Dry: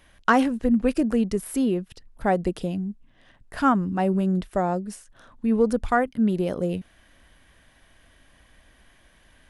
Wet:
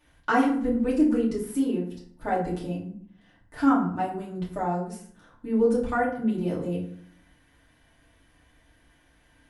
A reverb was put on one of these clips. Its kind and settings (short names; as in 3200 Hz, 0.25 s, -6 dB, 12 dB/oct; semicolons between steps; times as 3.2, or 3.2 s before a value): FDN reverb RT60 0.58 s, low-frequency decay 1.3×, high-frequency decay 0.6×, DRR -7.5 dB; gain -12 dB